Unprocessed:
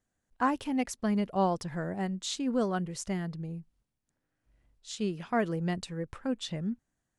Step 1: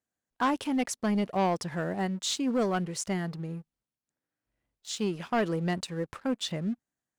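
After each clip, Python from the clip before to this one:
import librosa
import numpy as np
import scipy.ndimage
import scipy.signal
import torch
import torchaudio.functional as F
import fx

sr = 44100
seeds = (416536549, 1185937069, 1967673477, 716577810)

y = fx.highpass(x, sr, hz=200.0, slope=6)
y = fx.leveller(y, sr, passes=2)
y = y * librosa.db_to_amplitude(-2.5)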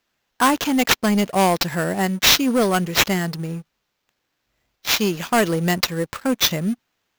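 y = fx.high_shelf(x, sr, hz=2600.0, db=11.5)
y = fx.sample_hold(y, sr, seeds[0], rate_hz=9500.0, jitter_pct=0)
y = y * librosa.db_to_amplitude(8.5)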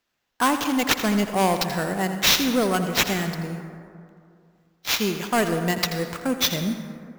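y = x + 10.0 ** (-12.0 / 20.0) * np.pad(x, (int(83 * sr / 1000.0), 0))[:len(x)]
y = fx.rev_plate(y, sr, seeds[1], rt60_s=2.4, hf_ratio=0.35, predelay_ms=95, drr_db=9.0)
y = y * librosa.db_to_amplitude(-4.0)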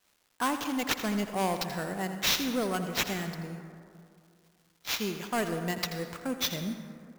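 y = fx.dmg_crackle(x, sr, seeds[2], per_s=540.0, level_db=-46.0)
y = y * librosa.db_to_amplitude(-8.5)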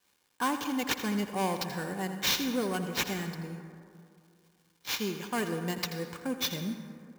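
y = fx.notch_comb(x, sr, f0_hz=660.0)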